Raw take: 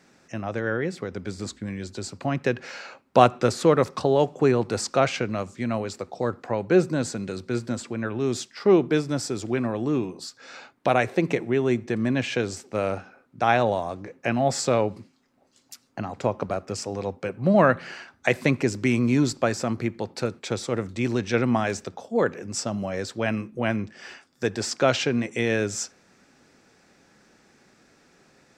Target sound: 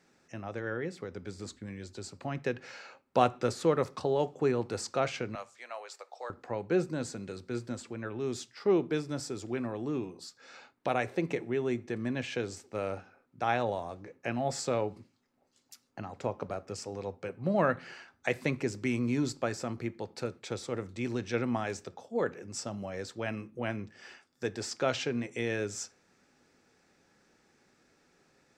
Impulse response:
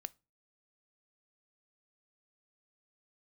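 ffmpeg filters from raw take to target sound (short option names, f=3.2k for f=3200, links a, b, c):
-filter_complex "[0:a]asettb=1/sr,asplit=3[a][b][c];[a]atrim=end=5.354[d];[b]atrim=start=5.35:end=6.3,asetpts=PTS-STARTPTS,afade=t=in:d=0.004:c=qsin,afade=t=out:st=0.946:d=0.004:c=qsin,highpass=f=610:w=0.5412,highpass=f=610:w=1.3066[e];[c]atrim=start=6.296[f];[d][e]acrossfade=d=0.004:c1=hsin:c2=qsin[g];[g][f]acrossfade=d=0.004:c1=qsin:c2=hsin[h];[1:a]atrim=start_sample=2205[i];[h][i]afir=irnorm=-1:irlink=0,volume=-5dB"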